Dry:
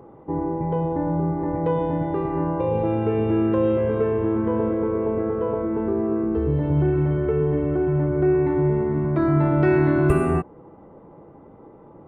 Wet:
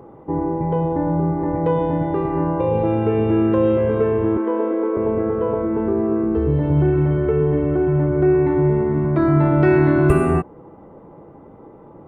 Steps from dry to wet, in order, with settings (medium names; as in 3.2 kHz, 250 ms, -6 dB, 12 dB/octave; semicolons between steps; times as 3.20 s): 4.37–4.97 s: Chebyshev high-pass 240 Hz, order 6; trim +3.5 dB